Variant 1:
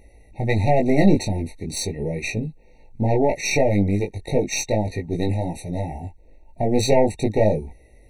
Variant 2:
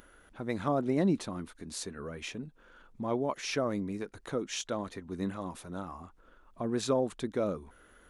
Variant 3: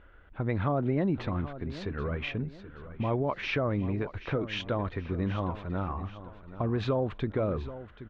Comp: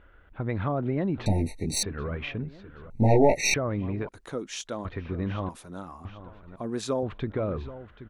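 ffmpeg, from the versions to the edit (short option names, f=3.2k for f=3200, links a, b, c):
-filter_complex "[0:a]asplit=2[a][b];[1:a]asplit=3[c][d][e];[2:a]asplit=6[f][g][h][i][j][k];[f]atrim=end=1.262[l];[a]atrim=start=1.258:end=1.832[m];[g]atrim=start=1.828:end=2.902[n];[b]atrim=start=2.898:end=3.542[o];[h]atrim=start=3.538:end=4.092[p];[c]atrim=start=4.088:end=4.852[q];[i]atrim=start=4.848:end=5.492[r];[d]atrim=start=5.488:end=6.052[s];[j]atrim=start=6.048:end=6.562[t];[e]atrim=start=6.558:end=7.032[u];[k]atrim=start=7.028[v];[l][m]acrossfade=d=0.004:c1=hsin:c2=hsin[w];[w][n]acrossfade=d=0.004:c1=hsin:c2=hsin[x];[x][o]acrossfade=d=0.004:c1=hsin:c2=hsin[y];[y][p]acrossfade=d=0.004:c1=hsin:c2=hsin[z];[z][q]acrossfade=d=0.004:c1=hsin:c2=hsin[aa];[aa][r]acrossfade=d=0.004:c1=hsin:c2=hsin[ab];[ab][s]acrossfade=d=0.004:c1=hsin:c2=hsin[ac];[ac][t]acrossfade=d=0.004:c1=hsin:c2=hsin[ad];[ad][u]acrossfade=d=0.004:c1=hsin:c2=hsin[ae];[ae][v]acrossfade=d=0.004:c1=hsin:c2=hsin"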